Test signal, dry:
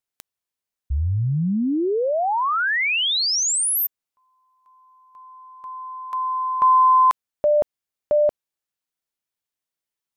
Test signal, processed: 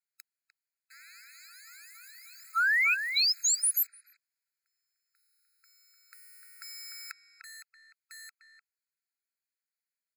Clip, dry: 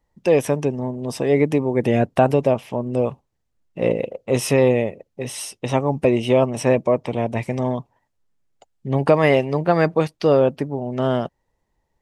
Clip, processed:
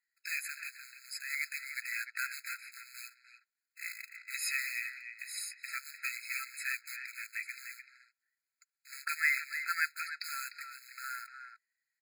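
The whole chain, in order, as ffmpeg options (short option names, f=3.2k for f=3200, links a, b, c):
-filter_complex "[0:a]acrusher=bits=5:mode=log:mix=0:aa=0.000001,asplit=2[a][b];[b]adelay=300,highpass=300,lowpass=3.4k,asoftclip=type=hard:threshold=-10dB,volume=-8dB[c];[a][c]amix=inputs=2:normalize=0,afftfilt=real='re*eq(mod(floor(b*sr/1024/1300),2),1)':imag='im*eq(mod(floor(b*sr/1024/1300),2),1)':win_size=1024:overlap=0.75,volume=-3.5dB"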